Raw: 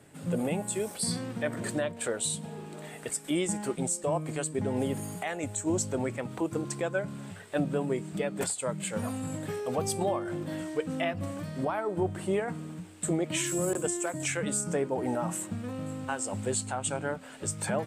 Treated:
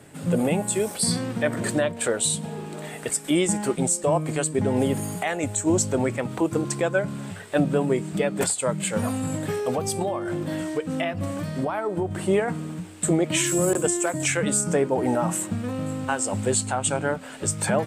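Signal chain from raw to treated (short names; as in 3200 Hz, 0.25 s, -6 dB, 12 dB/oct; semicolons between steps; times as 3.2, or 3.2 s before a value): 9.7–12.11 compressor, threshold -30 dBFS, peak gain reduction 7 dB; gain +7.5 dB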